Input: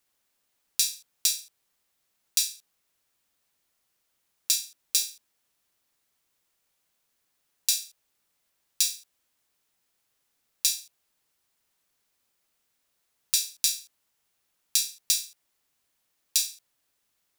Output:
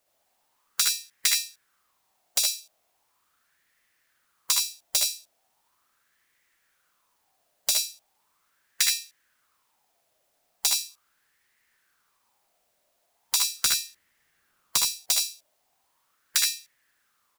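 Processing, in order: integer overflow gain 10 dB; 13.42–14.90 s: bass shelf 500 Hz +7 dB; spectral gate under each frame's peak -25 dB strong; on a send: early reflections 62 ms -6 dB, 75 ms -4 dB; on the sum: sweeping bell 0.39 Hz 620–1900 Hz +16 dB

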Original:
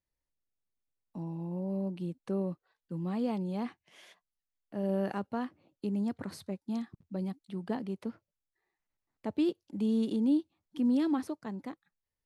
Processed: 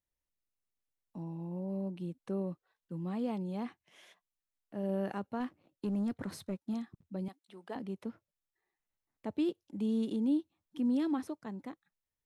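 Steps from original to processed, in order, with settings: band-stop 4.6 kHz, Q 11; 5.40–6.74 s: waveshaping leveller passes 1; 7.28–7.76 s: high-pass 480 Hz 12 dB/octave; trim -3 dB

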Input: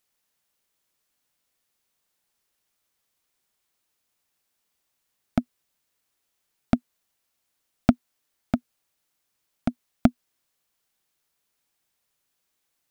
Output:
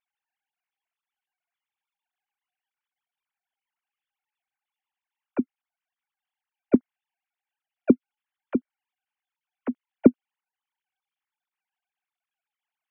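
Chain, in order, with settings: formants replaced by sine waves; trim +2.5 dB

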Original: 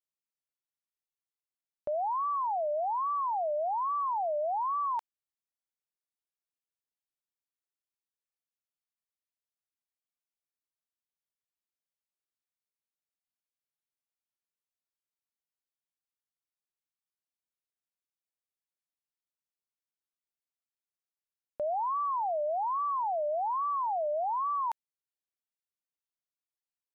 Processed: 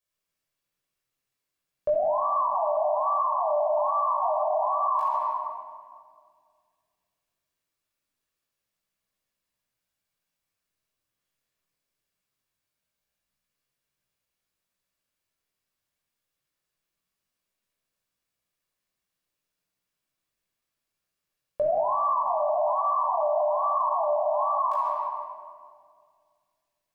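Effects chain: chorus voices 2, 0.22 Hz, delay 19 ms, depth 3.8 ms; simulated room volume 3700 m³, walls mixed, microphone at 5.6 m; peak limiter -26 dBFS, peak gain reduction 13 dB; trim +8 dB

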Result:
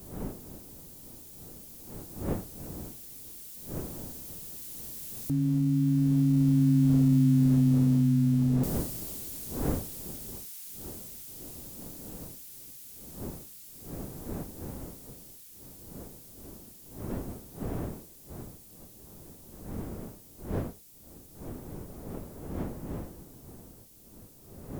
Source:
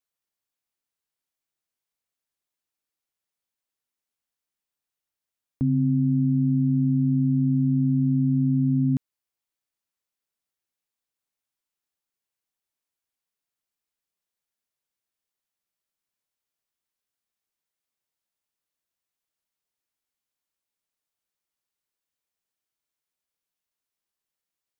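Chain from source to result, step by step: zero-crossing glitches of -29.5 dBFS; Doppler pass-by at 7.17 s, 20 m/s, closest 25 m; wind noise 300 Hz -41 dBFS

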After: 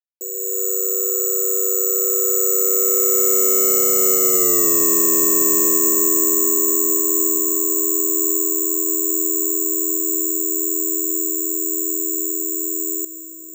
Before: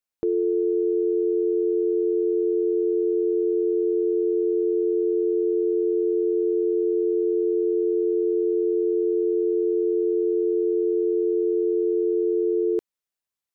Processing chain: Doppler pass-by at 4.55 s, 31 m/s, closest 7.9 m; high-pass 280 Hz 24 dB/octave; bass shelf 400 Hz +11.5 dB; peak limiter -22.5 dBFS, peak gain reduction 11.5 dB; level rider gain up to 9 dB; saturation -27 dBFS, distortion -6 dB; feedback echo behind a low-pass 1009 ms, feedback 80%, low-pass 530 Hz, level -20 dB; careless resampling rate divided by 6×, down filtered, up zero stuff; trim +5.5 dB

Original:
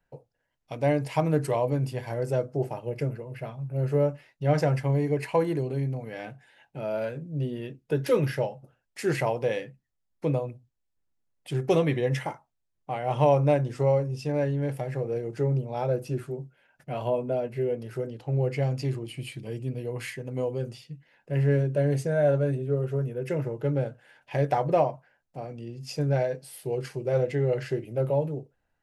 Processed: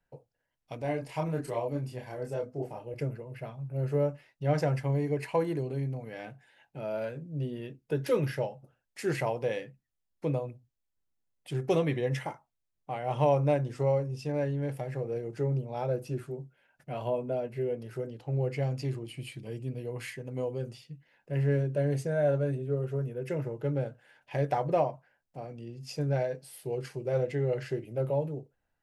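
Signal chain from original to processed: 0.82–2.94 s: chorus voices 6, 1.1 Hz, delay 29 ms, depth 3 ms; trim -4 dB

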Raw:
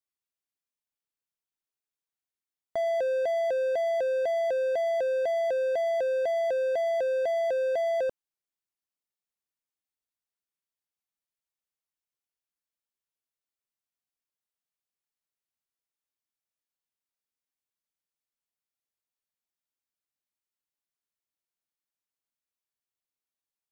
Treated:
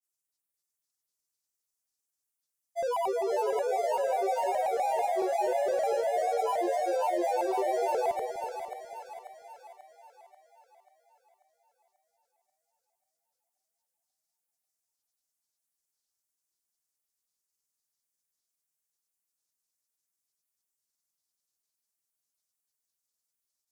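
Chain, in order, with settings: resonant high shelf 5.1 kHz +11.5 dB, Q 1.5; granulator, grains 20 per s, pitch spread up and down by 7 st; two-band feedback delay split 700 Hz, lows 245 ms, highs 538 ms, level -6 dB; trim -1.5 dB

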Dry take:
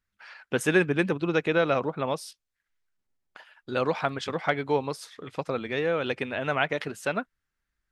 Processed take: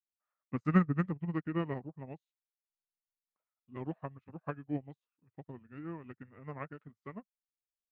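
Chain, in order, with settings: tone controls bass +11 dB, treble -13 dB; formant shift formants -5 st; upward expansion 2.5:1, over -41 dBFS; trim -4.5 dB

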